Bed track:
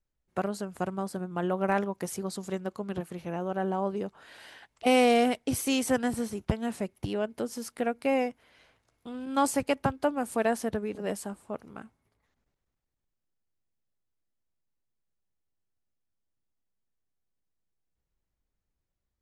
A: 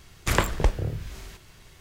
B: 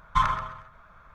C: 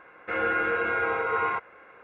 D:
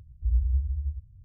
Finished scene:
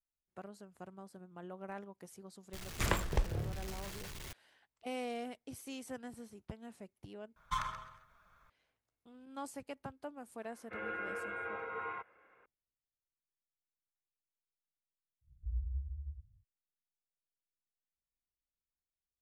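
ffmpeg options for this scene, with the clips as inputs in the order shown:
-filter_complex "[0:a]volume=0.119[s0];[1:a]aeval=exprs='val(0)+0.5*0.0266*sgn(val(0))':c=same[s1];[2:a]crystalizer=i=4:c=0[s2];[s0]asplit=2[s3][s4];[s3]atrim=end=7.364[s5];[s2]atrim=end=1.14,asetpts=PTS-STARTPTS,volume=0.168[s6];[s4]atrim=start=8.496[s7];[s1]atrim=end=1.8,asetpts=PTS-STARTPTS,volume=0.299,afade=t=in:d=0.004:c=hsin,afade=t=out:st=1.796:d=0.004:c=hsin,adelay=2530[s8];[3:a]atrim=end=2.03,asetpts=PTS-STARTPTS,volume=0.178,afade=t=in:d=0.004:c=hsin,afade=t=out:st=2.026:d=0.004:c=hsin,adelay=10430[s9];[4:a]atrim=end=1.24,asetpts=PTS-STARTPTS,volume=0.211,afade=t=in:d=0.1,afade=t=out:st=1.14:d=0.1,adelay=15210[s10];[s5][s6]acrossfade=d=0.004:c1=hsin:c2=hsin[s11];[s11][s7]acrossfade=d=0.004:c1=hsin:c2=hsin[s12];[s12][s8][s9][s10]amix=inputs=4:normalize=0"

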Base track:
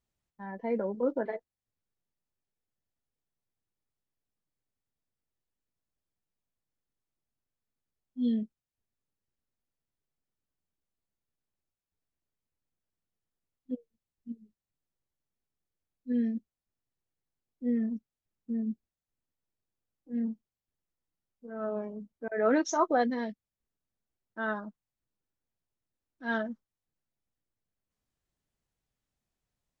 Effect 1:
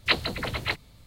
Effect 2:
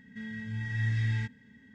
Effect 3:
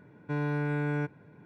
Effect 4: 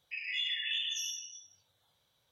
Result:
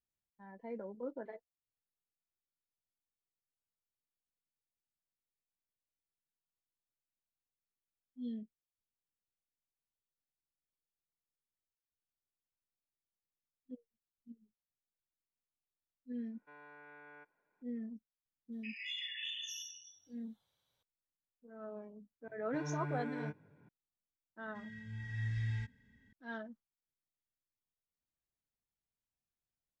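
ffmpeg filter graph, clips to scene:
-filter_complex "[3:a]asplit=2[s0][s1];[0:a]volume=0.224[s2];[s0]highpass=750,lowpass=2400[s3];[s1]flanger=delay=19:depth=5.3:speed=1.7[s4];[2:a]asubboost=boost=9:cutoff=88[s5];[s3]atrim=end=1.45,asetpts=PTS-STARTPTS,volume=0.15,afade=t=in:d=0.004:c=hsin,afade=t=out:st=1.446:d=0.004:c=hsin,adelay=16180[s6];[4:a]atrim=end=2.31,asetpts=PTS-STARTPTS,volume=0.398,afade=t=in:d=0.004:c=hsin,afade=t=out:st=2.306:d=0.004:c=hsin,adelay=18520[s7];[s4]atrim=end=1.45,asetpts=PTS-STARTPTS,volume=0.422,afade=t=in:d=0.004:c=hsin,afade=t=out:st=1.446:d=0.004:c=hsin,adelay=22240[s8];[s5]atrim=end=1.74,asetpts=PTS-STARTPTS,volume=0.316,afade=t=in:d=0.004:c=hsin,afade=t=out:st=1.736:d=0.004:c=hsin,adelay=24390[s9];[s2][s6][s7][s8][s9]amix=inputs=5:normalize=0"

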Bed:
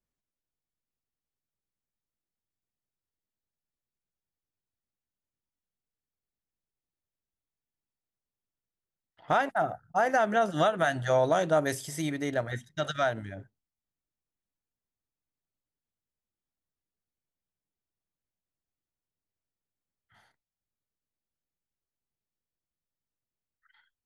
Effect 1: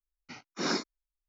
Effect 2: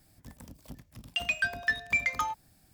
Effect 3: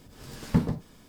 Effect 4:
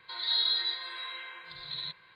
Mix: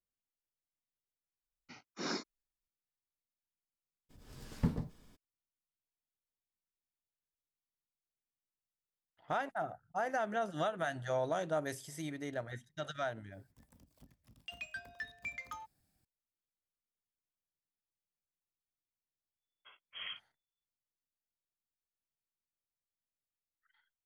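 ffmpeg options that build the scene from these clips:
-filter_complex "[1:a]asplit=2[s0][s1];[0:a]volume=0.316[s2];[3:a]lowshelf=f=70:g=8[s3];[s1]lowpass=f=3000:t=q:w=0.5098,lowpass=f=3000:t=q:w=0.6013,lowpass=f=3000:t=q:w=0.9,lowpass=f=3000:t=q:w=2.563,afreqshift=-3500[s4];[s0]atrim=end=1.28,asetpts=PTS-STARTPTS,volume=0.398,afade=t=in:d=0.004:c=hsin,afade=t=out:st=1.276:d=0.004:c=hsin,adelay=1400[s5];[s3]atrim=end=1.08,asetpts=PTS-STARTPTS,volume=0.299,afade=t=in:d=0.02,afade=t=out:st=1.06:d=0.02,adelay=180369S[s6];[2:a]atrim=end=2.73,asetpts=PTS-STARTPTS,volume=0.168,afade=t=in:d=0.004:c=hsin,afade=t=out:st=2.726:d=0.004:c=hsin,adelay=587412S[s7];[s4]atrim=end=1.28,asetpts=PTS-STARTPTS,volume=0.224,afade=t=in:d=0.004:c=hsin,afade=t=out:st=1.276:d=0.004:c=hsin,adelay=19360[s8];[s2][s5][s6][s7][s8]amix=inputs=5:normalize=0"

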